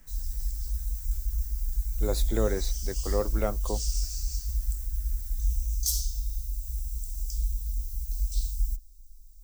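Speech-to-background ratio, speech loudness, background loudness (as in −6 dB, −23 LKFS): −0.5 dB, −33.0 LKFS, −32.5 LKFS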